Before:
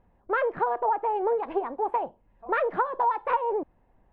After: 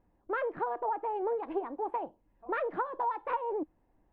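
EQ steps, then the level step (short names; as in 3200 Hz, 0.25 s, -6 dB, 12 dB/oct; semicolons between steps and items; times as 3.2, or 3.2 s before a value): bell 310 Hz +9.5 dB 0.35 oct; -7.5 dB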